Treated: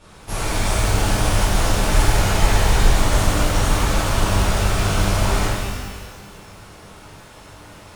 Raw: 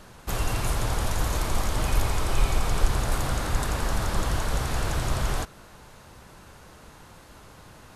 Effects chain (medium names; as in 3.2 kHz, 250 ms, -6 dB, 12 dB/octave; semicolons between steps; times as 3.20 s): formant shift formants -3 st; Chebyshev shaper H 7 -26 dB, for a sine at -7 dBFS; pitch-shifted reverb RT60 1.6 s, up +12 st, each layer -8 dB, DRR -11 dB; trim -1 dB